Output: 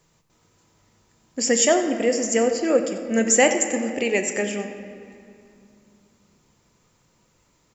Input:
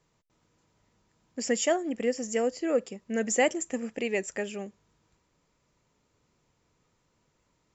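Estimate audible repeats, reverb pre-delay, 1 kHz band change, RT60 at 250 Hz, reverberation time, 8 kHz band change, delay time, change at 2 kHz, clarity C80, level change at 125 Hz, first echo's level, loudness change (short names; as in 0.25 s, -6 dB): 1, 6 ms, +7.5 dB, 3.4 s, 2.5 s, n/a, 92 ms, +8.5 dB, 8.0 dB, n/a, -14.5 dB, +8.5 dB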